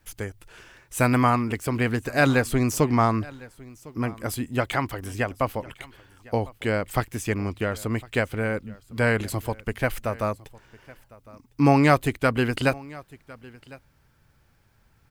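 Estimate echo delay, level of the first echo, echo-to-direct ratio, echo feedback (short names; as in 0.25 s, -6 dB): 1.055 s, -22.0 dB, -22.0 dB, no steady repeat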